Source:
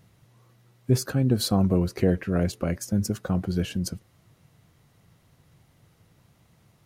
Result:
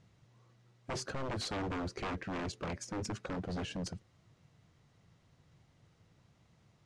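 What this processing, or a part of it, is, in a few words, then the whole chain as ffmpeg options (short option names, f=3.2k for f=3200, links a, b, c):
synthesiser wavefolder: -filter_complex "[0:a]aeval=exprs='0.0531*(abs(mod(val(0)/0.0531+3,4)-2)-1)':c=same,lowpass=f=7.5k:w=0.5412,lowpass=f=7.5k:w=1.3066,asettb=1/sr,asplit=3[a][b][c];[a]atrim=end=2.684[d];[b]atrim=start=2.68:end=3.27,asetpts=PTS-STARTPTS,afade=t=in:d=0.004:c=qsin,afade=t=out:st=0.586:d=0.004:c=qsin,equalizer=f=2.3k:w=3.6:g=5.5[e];[c]atrim=start=3.266[f];[d][e]acrossfade=d=0.004:c1=hsin:c2=qsin[g];[g][f]acrossfade=d=0.004:c1=qsin:c2=hsin,volume=-6.5dB"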